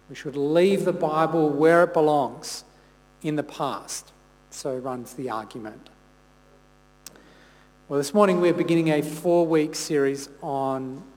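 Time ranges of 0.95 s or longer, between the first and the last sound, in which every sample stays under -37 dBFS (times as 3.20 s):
5.87–7.06 s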